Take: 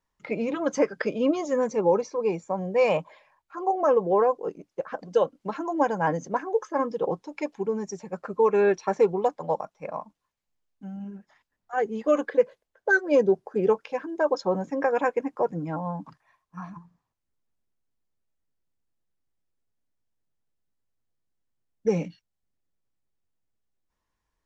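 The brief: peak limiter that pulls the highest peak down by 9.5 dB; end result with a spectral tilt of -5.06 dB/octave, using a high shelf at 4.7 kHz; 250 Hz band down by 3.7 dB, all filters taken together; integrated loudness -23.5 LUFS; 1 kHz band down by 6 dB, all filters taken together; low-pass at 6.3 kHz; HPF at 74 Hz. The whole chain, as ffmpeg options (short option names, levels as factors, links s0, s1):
-af "highpass=74,lowpass=6300,equalizer=f=250:t=o:g=-4.5,equalizer=f=1000:t=o:g=-8,highshelf=f=4700:g=7,volume=2.99,alimiter=limit=0.251:level=0:latency=1"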